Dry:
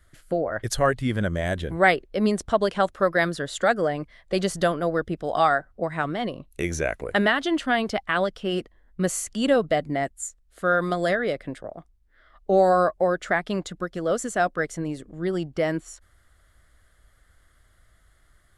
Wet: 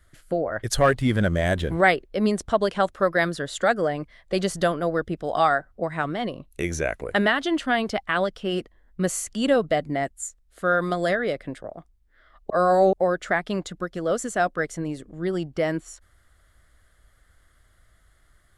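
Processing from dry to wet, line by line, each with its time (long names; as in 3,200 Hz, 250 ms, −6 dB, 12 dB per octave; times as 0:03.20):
0:00.73–0:01.81: leveller curve on the samples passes 1
0:12.50–0:12.93: reverse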